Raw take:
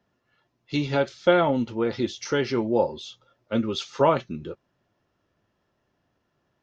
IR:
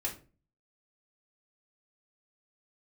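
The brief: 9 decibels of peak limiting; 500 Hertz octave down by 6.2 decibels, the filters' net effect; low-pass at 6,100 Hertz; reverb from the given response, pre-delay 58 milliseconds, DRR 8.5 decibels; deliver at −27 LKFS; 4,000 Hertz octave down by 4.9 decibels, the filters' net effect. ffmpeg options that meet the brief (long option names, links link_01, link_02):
-filter_complex "[0:a]lowpass=6100,equalizer=frequency=500:width_type=o:gain=-7.5,equalizer=frequency=4000:width_type=o:gain=-5.5,alimiter=limit=-19.5dB:level=0:latency=1,asplit=2[link_01][link_02];[1:a]atrim=start_sample=2205,adelay=58[link_03];[link_02][link_03]afir=irnorm=-1:irlink=0,volume=-11.5dB[link_04];[link_01][link_04]amix=inputs=2:normalize=0,volume=4dB"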